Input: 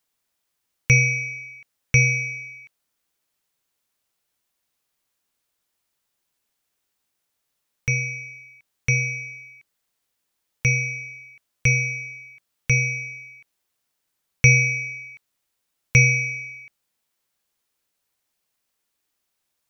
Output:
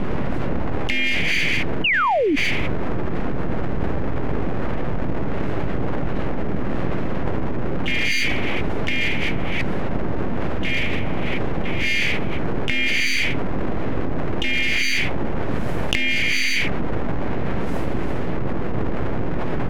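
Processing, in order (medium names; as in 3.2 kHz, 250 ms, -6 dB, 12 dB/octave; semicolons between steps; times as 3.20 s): wind noise 210 Hz -22 dBFS; recorder AGC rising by 9 dB/s; dynamic bell 3.3 kHz, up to +5 dB, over -38 dBFS, Q 2.2; low-pass that closes with the level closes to 1.3 kHz, closed at -17.5 dBFS; full-wave rectifier; peaking EQ 2 kHz +9 dB 1.4 oct; harmony voices -3 st -10 dB, +5 st -7 dB; painted sound fall, 1.84–2.36 s, 260–3000 Hz -4 dBFS; level flattener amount 100%; trim -15 dB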